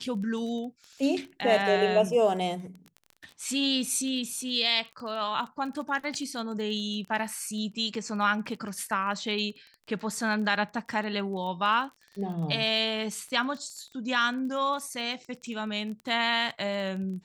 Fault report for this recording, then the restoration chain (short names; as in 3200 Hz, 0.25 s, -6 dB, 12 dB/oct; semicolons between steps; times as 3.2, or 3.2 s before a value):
crackle 21/s -36 dBFS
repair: de-click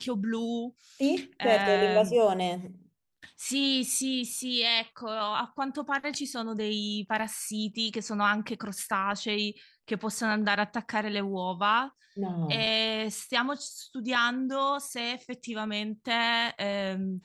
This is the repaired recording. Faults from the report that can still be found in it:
none